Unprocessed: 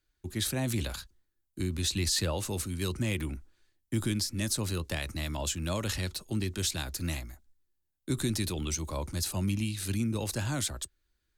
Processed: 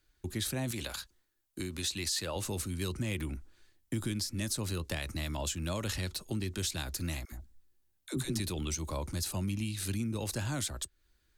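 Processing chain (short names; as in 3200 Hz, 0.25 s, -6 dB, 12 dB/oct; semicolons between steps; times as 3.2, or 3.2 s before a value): 0.71–2.36 low shelf 250 Hz -11 dB; compressor 2:1, threshold -45 dBFS, peak gain reduction 11 dB; 7.25–8.4 dispersion lows, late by 70 ms, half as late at 470 Hz; gain +6 dB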